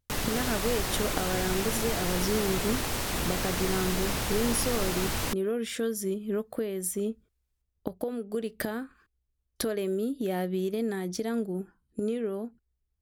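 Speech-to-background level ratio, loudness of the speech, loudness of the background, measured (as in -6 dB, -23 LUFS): -1.5 dB, -32.0 LUFS, -30.5 LUFS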